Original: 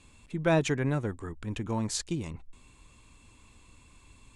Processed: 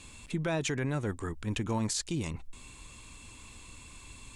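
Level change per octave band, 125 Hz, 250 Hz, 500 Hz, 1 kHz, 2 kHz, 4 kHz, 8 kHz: −2.0, −2.0, −5.0, −3.5, −2.0, +1.0, +1.5 decibels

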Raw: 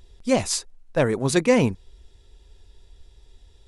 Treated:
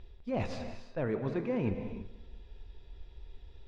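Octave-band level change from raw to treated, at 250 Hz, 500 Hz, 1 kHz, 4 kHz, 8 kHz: −11.5 dB, −13.0 dB, −13.0 dB, −21.5 dB, below −30 dB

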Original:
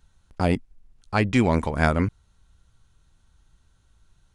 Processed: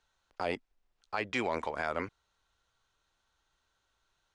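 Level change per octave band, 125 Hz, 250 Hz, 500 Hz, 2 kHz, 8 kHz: −25.0, −17.5, −9.5, −8.0, −11.5 decibels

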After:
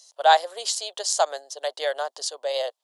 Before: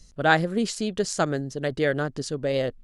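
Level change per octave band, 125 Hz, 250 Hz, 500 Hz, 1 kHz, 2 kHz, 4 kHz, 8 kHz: below −40 dB, below −30 dB, −1.0 dB, +6.0 dB, −4.5 dB, +6.5 dB, +7.0 dB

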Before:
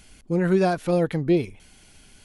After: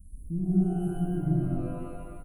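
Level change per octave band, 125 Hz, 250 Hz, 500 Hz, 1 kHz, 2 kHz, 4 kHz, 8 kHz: −0.5 dB, −4.0 dB, −14.5 dB, −13.0 dB, below −20 dB, below −20 dB, can't be measured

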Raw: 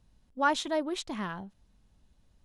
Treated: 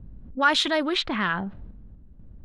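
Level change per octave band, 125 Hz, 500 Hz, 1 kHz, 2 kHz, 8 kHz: +9.0, +4.5, +5.0, +10.5, +3.5 decibels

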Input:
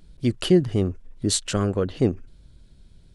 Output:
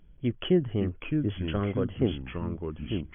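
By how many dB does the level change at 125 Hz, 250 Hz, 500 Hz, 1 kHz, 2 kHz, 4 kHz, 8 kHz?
−4.0 dB, −4.0 dB, −5.5 dB, −5.0 dB, −2.5 dB, −9.0 dB, below −40 dB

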